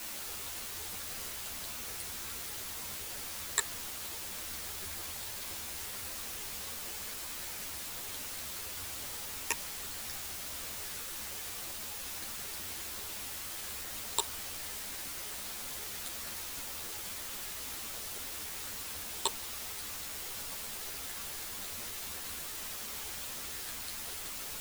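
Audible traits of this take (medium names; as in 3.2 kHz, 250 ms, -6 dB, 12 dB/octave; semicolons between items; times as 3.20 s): phasing stages 8, 0.79 Hz, lowest notch 780–2000 Hz; a quantiser's noise floor 6-bit, dither triangular; a shimmering, thickened sound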